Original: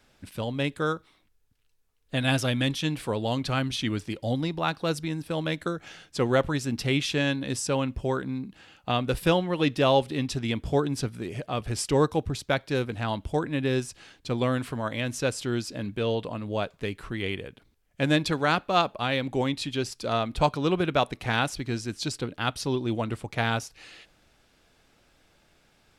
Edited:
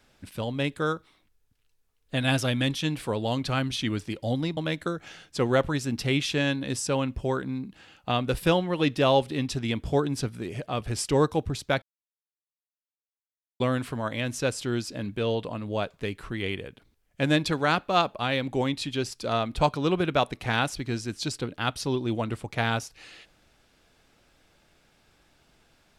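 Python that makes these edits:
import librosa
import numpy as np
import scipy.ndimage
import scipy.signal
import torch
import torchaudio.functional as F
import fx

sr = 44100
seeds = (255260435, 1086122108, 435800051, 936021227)

y = fx.edit(x, sr, fx.cut(start_s=4.57, length_s=0.8),
    fx.silence(start_s=12.62, length_s=1.78), tone=tone)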